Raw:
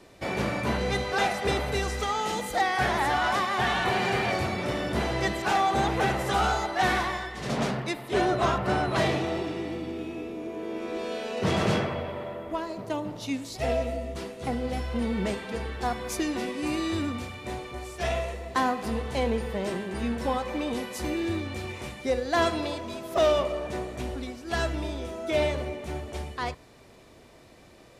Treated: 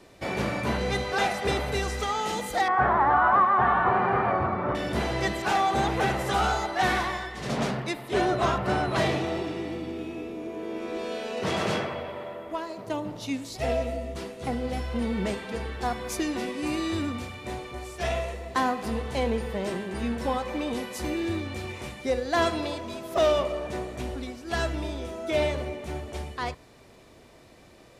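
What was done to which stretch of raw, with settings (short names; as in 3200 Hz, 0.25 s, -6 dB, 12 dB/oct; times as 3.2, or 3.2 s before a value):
2.68–4.75 synth low-pass 1200 Hz, resonance Q 2.9
11.41–12.87 low shelf 220 Hz -9 dB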